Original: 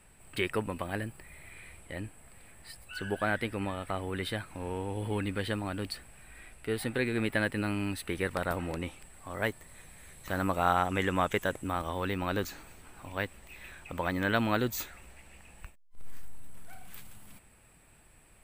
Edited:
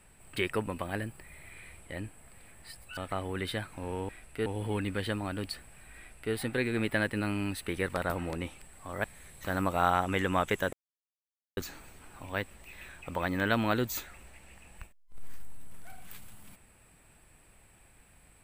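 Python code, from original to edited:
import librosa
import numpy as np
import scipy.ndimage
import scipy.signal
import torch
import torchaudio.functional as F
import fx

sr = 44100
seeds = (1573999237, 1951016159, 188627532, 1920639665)

y = fx.edit(x, sr, fx.cut(start_s=2.97, length_s=0.78),
    fx.duplicate(start_s=6.38, length_s=0.37, to_s=4.87),
    fx.cut(start_s=9.45, length_s=0.42),
    fx.silence(start_s=11.56, length_s=0.84), tone=tone)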